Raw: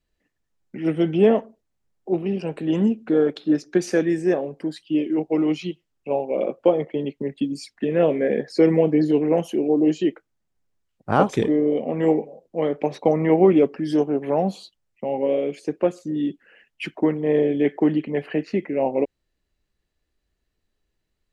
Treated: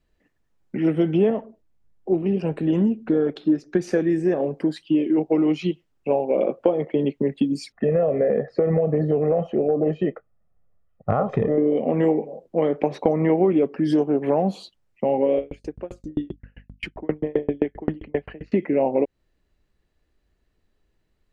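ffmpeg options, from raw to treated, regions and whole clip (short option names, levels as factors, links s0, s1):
-filter_complex "[0:a]asettb=1/sr,asplit=3[s0][s1][s2];[s0]atrim=end=1.304[s3];[s1]atrim=start=1.3:end=4.4,asetpts=PTS-STARTPTS,afade=t=in:d=0.004:c=qsin,afade=t=out:st=3.096:d=0.004:c=qsin,lowshelf=f=200:g=6.5,flanger=delay=0.5:depth=2.8:regen=79:speed=1.6:shape=sinusoidal[s4];[s2]atrim=start=4.396[s5];[s3][s4]acrossfade=d=0.004:c1=hsin:c2=qsin[s6];[s6][s5]acrossfade=d=0.004:c1=qsin:c2=hsin,asettb=1/sr,asplit=3[s7][s8][s9];[s7]atrim=end=7.724[s10];[s8]atrim=start=7.72:end=11.58,asetpts=PTS-STARTPTS,afade=t=in:d=0.004:c=qsin,afade=t=out:st=3.856:d=0.004:c=qsin,lowpass=1400,aecho=1:1:1.6:0.73,atrim=end_sample=170226,acompressor=threshold=0.126:ratio=6:attack=3.2:release=140:knee=1:detection=peak[s11];[s9]atrim=start=11.576[s12];[s10][s11]acrossfade=d=0.004:c1=hsin:c2=qsin[s13];[s13][s12]acrossfade=d=0.004:c1=qsin:c2=hsin,asettb=1/sr,asplit=3[s14][s15][s16];[s14]atrim=end=15.384[s17];[s15]atrim=start=15.38:end=18.52,asetpts=PTS-STARTPTS,afade=t=in:d=0.004:c=qsin,afade=t=out:st=3.136:d=0.004:c=qsin,aeval=exprs='val(0)+0.00794*(sin(2*PI*50*n/s)+sin(2*PI*2*50*n/s)/2+sin(2*PI*3*50*n/s)/3+sin(2*PI*4*50*n/s)/4+sin(2*PI*5*50*n/s)/5)':c=same,aeval=exprs='val(0)*pow(10,-38*if(lt(mod(7.6*n/s,1),2*abs(7.6)/1000),1-mod(7.6*n/s,1)/(2*abs(7.6)/1000),(mod(7.6*n/s,1)-2*abs(7.6)/1000)/(1-2*abs(7.6)/1000))/20)':c=same[s18];[s16]atrim=start=18.516[s19];[s17][s18]acrossfade=d=0.004:c1=hsin:c2=qsin[s20];[s20][s19]acrossfade=d=0.004:c1=qsin:c2=hsin,highshelf=f=3000:g=-9,acompressor=threshold=0.0631:ratio=4,volume=2.24"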